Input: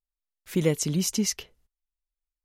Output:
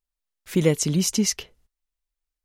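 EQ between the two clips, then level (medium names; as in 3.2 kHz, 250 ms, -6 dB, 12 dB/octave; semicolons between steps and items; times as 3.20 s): peaking EQ 13 kHz -4 dB 0.29 oct; +4.0 dB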